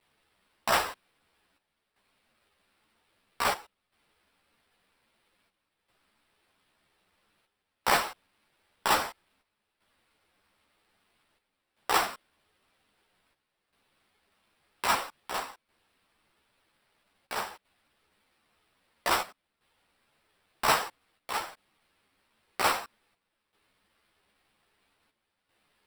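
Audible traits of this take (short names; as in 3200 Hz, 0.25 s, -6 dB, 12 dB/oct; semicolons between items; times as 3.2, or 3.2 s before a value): a quantiser's noise floor 12-bit, dither triangular; chopped level 0.51 Hz, depth 65%, duty 80%; aliases and images of a low sample rate 6600 Hz, jitter 0%; a shimmering, thickened sound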